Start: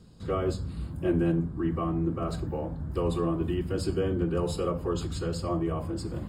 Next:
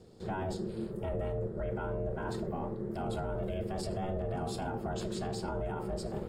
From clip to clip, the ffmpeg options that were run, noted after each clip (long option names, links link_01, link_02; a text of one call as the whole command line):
ffmpeg -i in.wav -af "alimiter=level_in=1.5dB:limit=-24dB:level=0:latency=1:release=12,volume=-1.5dB,aeval=exprs='val(0)*sin(2*PI*280*n/s)':channel_layout=same" out.wav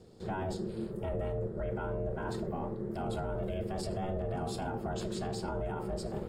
ffmpeg -i in.wav -af anull out.wav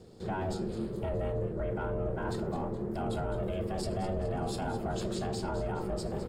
ffmpeg -i in.wav -filter_complex "[0:a]asplit=2[link_01][link_02];[link_02]asoftclip=type=tanh:threshold=-35.5dB,volume=-8dB[link_03];[link_01][link_03]amix=inputs=2:normalize=0,asplit=6[link_04][link_05][link_06][link_07][link_08][link_09];[link_05]adelay=210,afreqshift=-120,volume=-12dB[link_10];[link_06]adelay=420,afreqshift=-240,volume=-18.4dB[link_11];[link_07]adelay=630,afreqshift=-360,volume=-24.8dB[link_12];[link_08]adelay=840,afreqshift=-480,volume=-31.1dB[link_13];[link_09]adelay=1050,afreqshift=-600,volume=-37.5dB[link_14];[link_04][link_10][link_11][link_12][link_13][link_14]amix=inputs=6:normalize=0" out.wav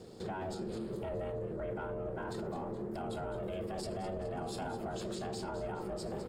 ffmpeg -i in.wav -af "lowshelf=frequency=130:gain=-9,alimiter=level_in=11dB:limit=-24dB:level=0:latency=1:release=168,volume=-11dB,volume=4dB" out.wav